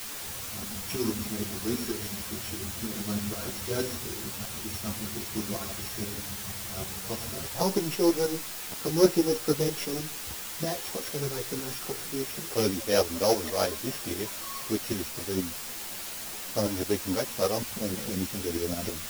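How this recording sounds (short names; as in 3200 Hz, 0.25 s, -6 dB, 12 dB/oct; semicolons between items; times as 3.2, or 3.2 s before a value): a buzz of ramps at a fixed pitch in blocks of 8 samples; tremolo saw up 6.3 Hz, depth 70%; a quantiser's noise floor 6-bit, dither triangular; a shimmering, thickened sound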